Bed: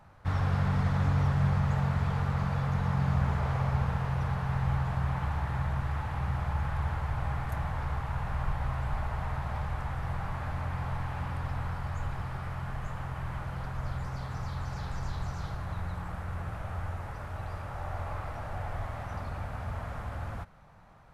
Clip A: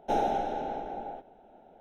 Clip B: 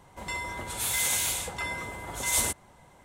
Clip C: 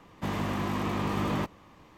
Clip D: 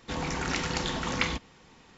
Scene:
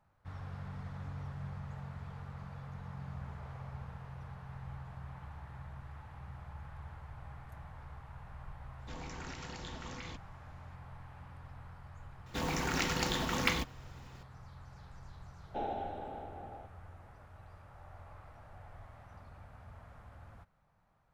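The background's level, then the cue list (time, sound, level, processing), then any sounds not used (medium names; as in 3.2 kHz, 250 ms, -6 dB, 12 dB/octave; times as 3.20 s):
bed -16.5 dB
8.79 s: add D -14.5 dB + peak limiter -19 dBFS
12.26 s: add D -2.5 dB + short-mantissa float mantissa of 2-bit
15.46 s: add A -10 dB + Chebyshev low-pass 3.7 kHz, order 3
not used: B, C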